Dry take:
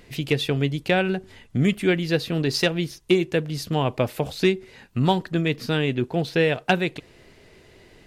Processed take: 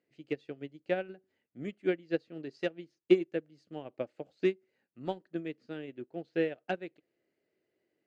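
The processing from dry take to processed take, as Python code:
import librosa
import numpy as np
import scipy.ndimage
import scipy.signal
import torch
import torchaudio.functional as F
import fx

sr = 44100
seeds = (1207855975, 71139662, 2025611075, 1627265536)

y = fx.cabinet(x, sr, low_hz=200.0, low_slope=12, high_hz=6200.0, hz=(320.0, 560.0, 1000.0, 2500.0, 3600.0, 5500.0), db=(7, 5, -8, -3, -9, -8))
y = fx.upward_expand(y, sr, threshold_db=-27.0, expansion=2.5)
y = y * librosa.db_to_amplitude(-5.0)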